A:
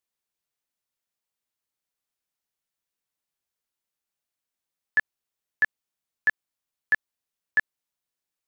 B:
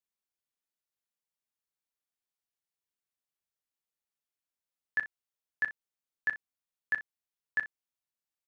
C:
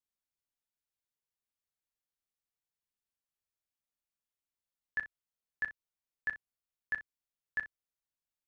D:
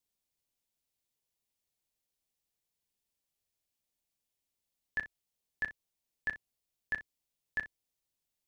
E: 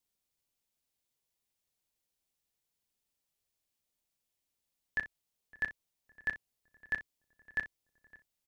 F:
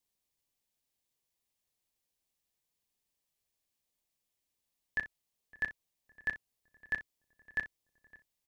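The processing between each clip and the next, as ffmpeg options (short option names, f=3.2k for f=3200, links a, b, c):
-af "aecho=1:1:34|62:0.224|0.178,volume=-8dB"
-af "lowshelf=f=130:g=10,volume=-4.5dB"
-af "equalizer=f=1.4k:t=o:w=1:g=-10,volume=7dB"
-filter_complex "[0:a]asplit=2[a][b];[b]adelay=561,lowpass=f=1.5k:p=1,volume=-20dB,asplit=2[c][d];[d]adelay=561,lowpass=f=1.5k:p=1,volume=0.49,asplit=2[e][f];[f]adelay=561,lowpass=f=1.5k:p=1,volume=0.49,asplit=2[g][h];[h]adelay=561,lowpass=f=1.5k:p=1,volume=0.49[i];[a][c][e][g][i]amix=inputs=5:normalize=0,volume=1dB"
-af "asuperstop=centerf=1400:order=4:qfactor=7.4"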